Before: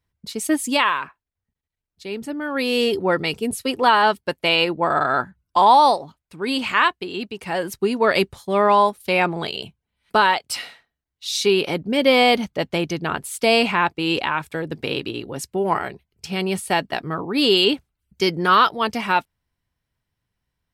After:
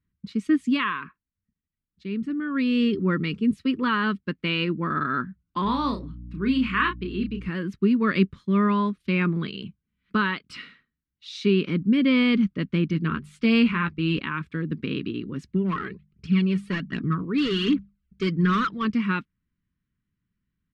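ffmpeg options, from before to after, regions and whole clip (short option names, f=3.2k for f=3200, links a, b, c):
-filter_complex "[0:a]asettb=1/sr,asplit=3[a][b][c];[a]atrim=end=5.644[d];[b]atrim=start=5.64:end=7.49,asetpts=PTS-STARTPTS,afade=t=in:d=0.004:c=qsin,afade=t=out:st=1.846:d=0.004:c=qsin,aeval=exprs='val(0)+0.0126*(sin(2*PI*60*n/s)+sin(2*PI*2*60*n/s)/2+sin(2*PI*3*60*n/s)/3+sin(2*PI*4*60*n/s)/4+sin(2*PI*5*60*n/s)/5)':c=same,asplit=2[e][f];[f]adelay=31,volume=-6dB[g];[e][g]amix=inputs=2:normalize=0,atrim=end_sample=81585[h];[c]atrim=start=7.486[i];[d][h]acrossfade=d=0.004:c1=hsin:c2=qsin[j];[j][i]acrossfade=d=0.004:c1=qsin:c2=hsin,asettb=1/sr,asplit=3[k][l][m];[k]atrim=end=12.924[n];[l]atrim=start=12.92:end=14.19,asetpts=PTS-STARTPTS,afade=t=in:d=0.004:c=qsin,afade=t=out:st=1.266:d=0.004:c=qsin,asubboost=boost=10.5:cutoff=95,bandreject=f=50:t=h:w=6,bandreject=f=100:t=h:w=6,bandreject=f=150:t=h:w=6,bandreject=f=200:t=h:w=6,asplit=2[o][p];[p]adelay=13,volume=-7dB[q];[o][q]amix=inputs=2:normalize=0,atrim=end_sample=56007[r];[m]atrim=start=14.186[s];[n][r]acrossfade=d=0.004:c1=hsin:c2=qsin[t];[t][s]acrossfade=d=0.004:c1=qsin:c2=hsin,asettb=1/sr,asplit=3[u][v][w];[u]atrim=end=15.474[x];[v]atrim=start=15.47:end=18.85,asetpts=PTS-STARTPTS,afade=t=in:d=0.004:c=qsin,afade=t=out:st=3.376:d=0.004:c=qsin,bandreject=f=50:t=h:w=6,bandreject=f=100:t=h:w=6,bandreject=f=150:t=h:w=6,bandreject=f=200:t=h:w=6,aphaser=in_gain=1:out_gain=1:delay=2.6:decay=0.58:speed=1.3:type=triangular,asoftclip=type=hard:threshold=-16.5dB[y];[w]atrim=start=18.846[z];[x][y]acrossfade=d=0.004:c1=hsin:c2=qsin[aa];[aa][z]acrossfade=d=0.004:c1=qsin:c2=hsin,lowpass=2.7k,deesser=0.5,firequalizer=gain_entry='entry(120,0);entry(190,10);entry(760,-29);entry(1100,-3)':delay=0.05:min_phase=1,volume=-2dB"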